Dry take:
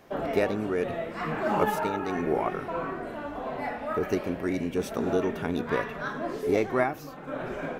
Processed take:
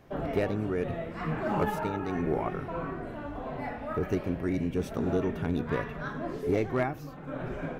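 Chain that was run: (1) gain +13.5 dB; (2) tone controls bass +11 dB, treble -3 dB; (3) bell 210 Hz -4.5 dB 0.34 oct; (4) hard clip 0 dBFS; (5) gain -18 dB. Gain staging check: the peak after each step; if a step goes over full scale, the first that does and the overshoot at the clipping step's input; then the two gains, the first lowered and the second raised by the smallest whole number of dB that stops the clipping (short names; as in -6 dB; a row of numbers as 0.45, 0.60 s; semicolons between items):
+3.0, +6.5, +6.0, 0.0, -18.0 dBFS; step 1, 6.0 dB; step 1 +7.5 dB, step 5 -12 dB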